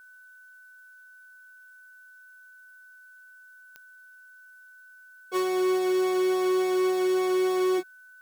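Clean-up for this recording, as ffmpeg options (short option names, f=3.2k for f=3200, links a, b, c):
-af "adeclick=t=4,bandreject=f=1.5k:w=30,agate=range=-21dB:threshold=-44dB"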